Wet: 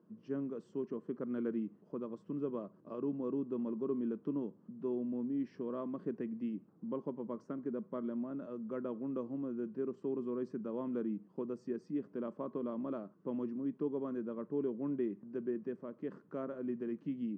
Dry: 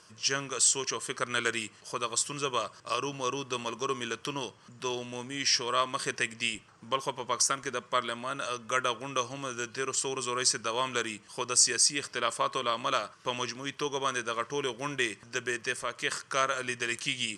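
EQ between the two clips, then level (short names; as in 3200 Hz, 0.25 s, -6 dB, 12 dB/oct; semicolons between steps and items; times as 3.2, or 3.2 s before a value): ladder band-pass 260 Hz, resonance 45%; bell 230 Hz +9 dB 2.1 oct; +4.5 dB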